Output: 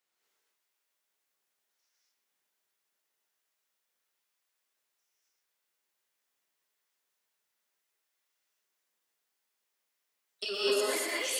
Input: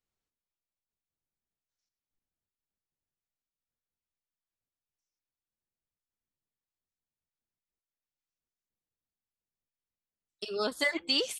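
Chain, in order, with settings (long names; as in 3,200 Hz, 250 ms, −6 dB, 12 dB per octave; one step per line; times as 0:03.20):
Bessel high-pass filter 540 Hz, order 2
parametric band 1,900 Hz +2.5 dB 0.8 octaves
compressor whose output falls as the input rises −40 dBFS, ratio −1
reverb whose tail is shaped and stops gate 270 ms rising, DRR −6 dB
feedback echo at a low word length 120 ms, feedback 55%, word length 9 bits, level −8 dB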